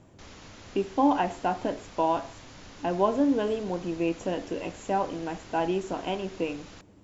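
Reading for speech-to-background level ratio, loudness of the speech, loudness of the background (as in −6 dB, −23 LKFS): 19.0 dB, −29.0 LKFS, −48.0 LKFS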